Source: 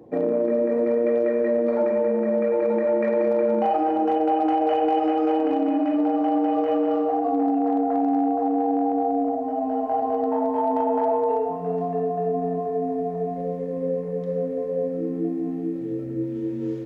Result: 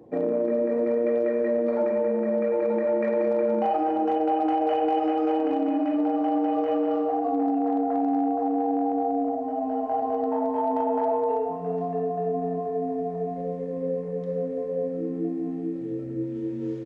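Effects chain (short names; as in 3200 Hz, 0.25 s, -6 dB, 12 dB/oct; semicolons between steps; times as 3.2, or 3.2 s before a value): downsampling 22050 Hz; gain -2.5 dB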